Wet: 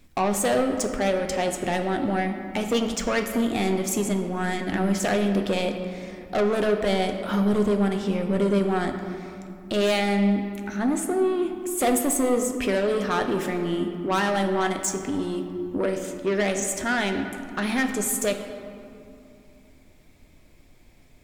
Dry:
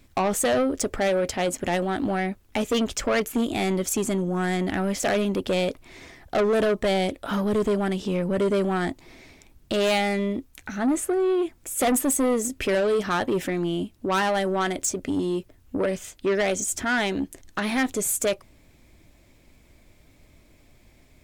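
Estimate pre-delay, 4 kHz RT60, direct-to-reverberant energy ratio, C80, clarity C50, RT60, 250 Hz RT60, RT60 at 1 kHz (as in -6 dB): 4 ms, 1.4 s, 4.5 dB, 8.0 dB, 7.0 dB, 2.6 s, 3.5 s, 2.6 s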